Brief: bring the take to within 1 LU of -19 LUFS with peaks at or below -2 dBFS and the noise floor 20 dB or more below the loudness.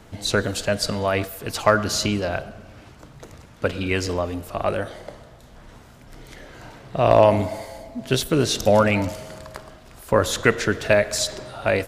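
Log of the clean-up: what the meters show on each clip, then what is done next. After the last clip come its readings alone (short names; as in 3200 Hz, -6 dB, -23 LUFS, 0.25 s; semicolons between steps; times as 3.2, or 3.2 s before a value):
loudness -21.5 LUFS; peak -2.0 dBFS; loudness target -19.0 LUFS
-> gain +2.5 dB; limiter -2 dBFS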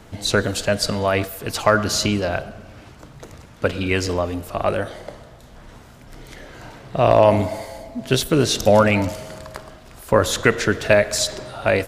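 loudness -19.5 LUFS; peak -2.0 dBFS; noise floor -45 dBFS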